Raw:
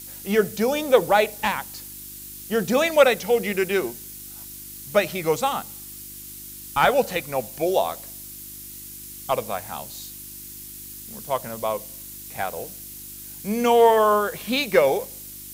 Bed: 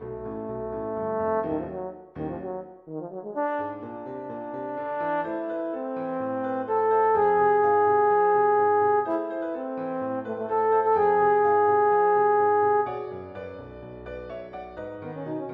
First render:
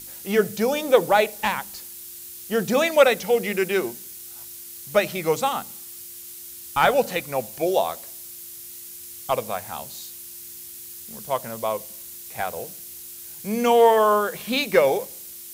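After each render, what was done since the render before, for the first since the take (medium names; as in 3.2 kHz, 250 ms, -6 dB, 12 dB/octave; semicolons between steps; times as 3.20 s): de-hum 50 Hz, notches 6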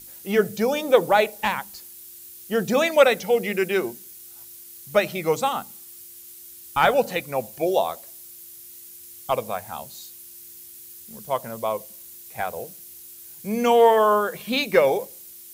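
noise reduction 6 dB, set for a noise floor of -40 dBFS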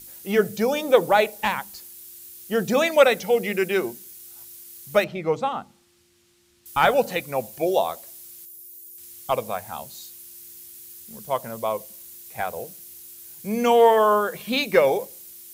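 5.04–6.66 s: tape spacing loss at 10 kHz 22 dB; 8.45–8.98 s: spectral contrast enhancement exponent 1.7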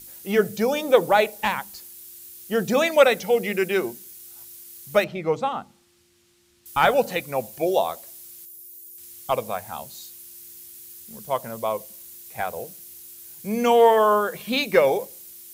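no audible change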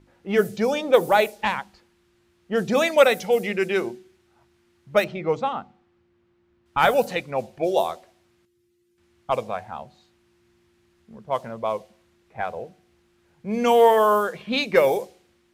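de-hum 371.2 Hz, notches 2; level-controlled noise filter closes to 1.3 kHz, open at -15 dBFS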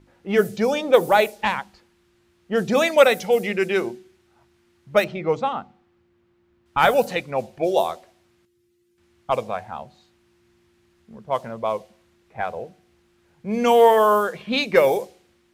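trim +1.5 dB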